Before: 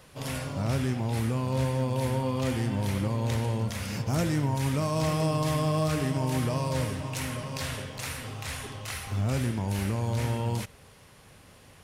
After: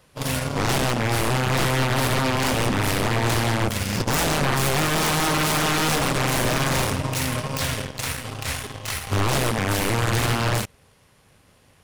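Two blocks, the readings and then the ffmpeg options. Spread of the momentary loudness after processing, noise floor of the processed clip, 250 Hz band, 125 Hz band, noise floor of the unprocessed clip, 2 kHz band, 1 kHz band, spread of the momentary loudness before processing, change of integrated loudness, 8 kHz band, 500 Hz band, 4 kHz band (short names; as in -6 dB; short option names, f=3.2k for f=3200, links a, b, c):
8 LU, -57 dBFS, +4.0 dB, +3.0 dB, -54 dBFS, +14.0 dB, +10.0 dB, 9 LU, +7.0 dB, +12.5 dB, +6.0 dB, +13.0 dB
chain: -af "aeval=exprs='0.112*(cos(1*acos(clip(val(0)/0.112,-1,1)))-cos(1*PI/2))+0.0158*(cos(2*acos(clip(val(0)/0.112,-1,1)))-cos(2*PI/2))+0.0158*(cos(3*acos(clip(val(0)/0.112,-1,1)))-cos(3*PI/2))+0.00794*(cos(7*acos(clip(val(0)/0.112,-1,1)))-cos(7*PI/2))':c=same,aeval=exprs='0.15*sin(PI/2*5.01*val(0)/0.15)':c=same"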